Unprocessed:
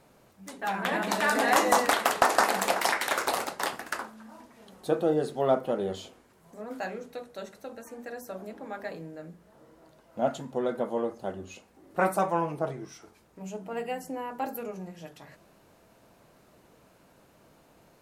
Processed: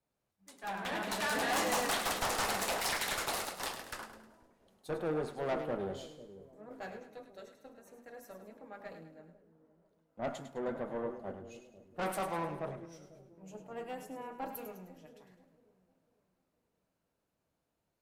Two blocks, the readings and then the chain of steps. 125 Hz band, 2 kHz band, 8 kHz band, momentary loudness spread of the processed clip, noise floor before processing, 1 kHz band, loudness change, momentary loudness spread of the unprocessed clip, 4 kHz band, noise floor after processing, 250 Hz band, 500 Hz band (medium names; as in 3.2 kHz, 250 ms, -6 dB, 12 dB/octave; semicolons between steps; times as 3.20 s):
-6.5 dB, -8.0 dB, -4.5 dB, 21 LU, -61 dBFS, -10.0 dB, -8.0 dB, 20 LU, -4.0 dB, -84 dBFS, -8.5 dB, -9.0 dB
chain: valve stage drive 27 dB, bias 0.45; two-band feedback delay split 570 Hz, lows 496 ms, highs 104 ms, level -8 dB; three bands expanded up and down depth 70%; trim -5 dB